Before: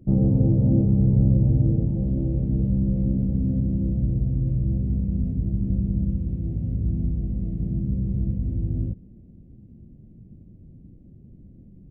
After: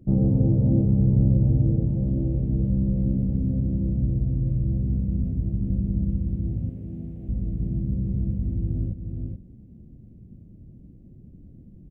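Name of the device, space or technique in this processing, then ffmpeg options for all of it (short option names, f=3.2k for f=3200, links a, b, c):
ducked delay: -filter_complex "[0:a]asplit=3[a][b][c];[b]adelay=427,volume=-4.5dB[d];[c]apad=whole_len=543771[e];[d][e]sidechaincompress=threshold=-30dB:ratio=8:attack=7:release=322[f];[a][f]amix=inputs=2:normalize=0,asettb=1/sr,asplit=3[g][h][i];[g]atrim=end=6.694[j];[h]atrim=start=6.69:end=7.29,asetpts=PTS-STARTPTS,afade=t=in:d=0.004:c=qsin,afade=t=out:st=0.596:d=0.004:c=qsin,highpass=f=310:p=1[k];[i]atrim=start=7.286[l];[j][k]acrossfade=d=0.004:c1=hsin:c2=qsin[m];[m][l]acrossfade=d=0.004:c1=qsin:c2=hsin,volume=-1dB"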